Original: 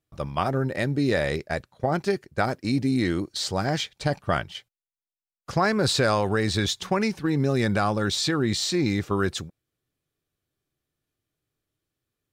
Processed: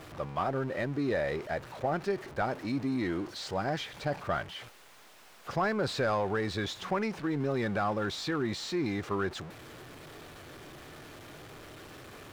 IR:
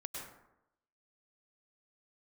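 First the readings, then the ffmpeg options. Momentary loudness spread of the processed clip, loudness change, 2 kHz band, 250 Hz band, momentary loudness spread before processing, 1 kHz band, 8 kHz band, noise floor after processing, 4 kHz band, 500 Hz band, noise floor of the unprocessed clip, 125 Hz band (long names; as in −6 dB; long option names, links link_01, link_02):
18 LU, −7.5 dB, −6.5 dB, −7.5 dB, 6 LU, −5.5 dB, −14.0 dB, −55 dBFS, −10.5 dB, −5.5 dB, below −85 dBFS, −10.0 dB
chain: -filter_complex "[0:a]aeval=exprs='val(0)+0.5*0.0266*sgn(val(0))':channel_layout=same,asplit=2[link_01][link_02];[link_02]highpass=frequency=720:poles=1,volume=12dB,asoftclip=type=tanh:threshold=-9dB[link_03];[link_01][link_03]amix=inputs=2:normalize=0,lowpass=frequency=1100:poles=1,volume=-6dB,volume=-8dB"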